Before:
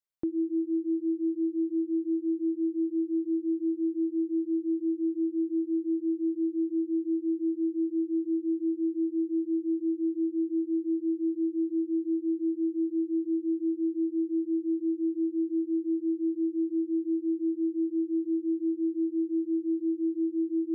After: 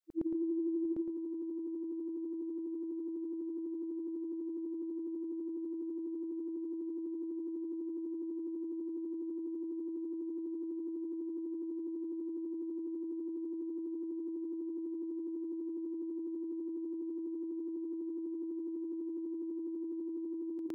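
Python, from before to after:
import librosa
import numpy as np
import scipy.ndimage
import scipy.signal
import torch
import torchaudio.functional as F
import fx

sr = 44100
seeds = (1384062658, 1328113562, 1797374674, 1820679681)

y = fx.frame_reverse(x, sr, frame_ms=224.0)
y = fx.over_compress(y, sr, threshold_db=-35.0, ratio=-1.0)
y = y + 10.0 ** (-5.0 / 20.0) * np.pad(y, (int(751 * sr / 1000.0), 0))[:len(y)]
y = y * librosa.db_to_amplitude(1.0)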